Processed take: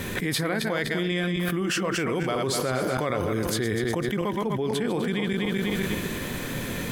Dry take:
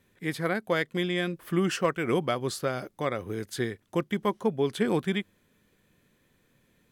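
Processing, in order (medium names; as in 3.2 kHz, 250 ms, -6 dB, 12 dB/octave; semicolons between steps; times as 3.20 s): backward echo that repeats 124 ms, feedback 49%, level -7 dB; level flattener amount 100%; trim -5.5 dB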